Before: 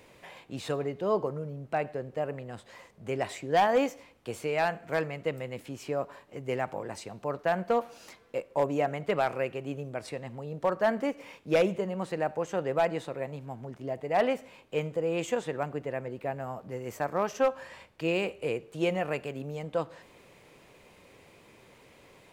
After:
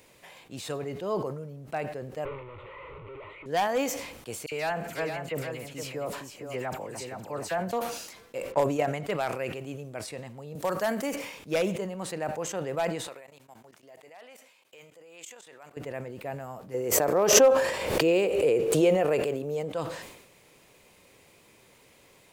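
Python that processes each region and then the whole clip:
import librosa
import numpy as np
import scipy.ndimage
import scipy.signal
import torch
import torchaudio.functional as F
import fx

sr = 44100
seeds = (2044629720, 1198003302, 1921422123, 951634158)

y = fx.chain(x, sr, fx.clip_1bit(),
    fx.lowpass(hz=2100.0, slope=24),
    fx.fixed_phaser(hz=1100.0, stages=8), at=(2.25, 3.46))
y = fx.chain(y, sr, fx.dispersion(late='lows', ms=59.0, hz=2300.0),
    fx.echo_single(ms=466, db=-7.0), at=(4.46, 7.73))
y = fx.chain(y, sr, fx.env_lowpass(base_hz=3000.0, full_db=-25.0),
    fx.transient(attack_db=8, sustain_db=-2), at=(8.52, 9.03))
y = fx.chain(y, sr, fx.high_shelf(hz=6400.0, db=11.0),
    fx.band_squash(depth_pct=40), at=(10.55, 11.16))
y = fx.chain(y, sr, fx.level_steps(step_db=20),
    fx.highpass(hz=1100.0, slope=6), at=(13.07, 15.77))
y = fx.chain(y, sr, fx.peak_eq(hz=450.0, db=11.5, octaves=1.3),
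    fx.pre_swell(db_per_s=48.0), at=(16.74, 19.72))
y = fx.high_shelf(y, sr, hz=4600.0, db=11.5)
y = fx.sustainer(y, sr, db_per_s=58.0)
y = y * librosa.db_to_amplitude(-3.5)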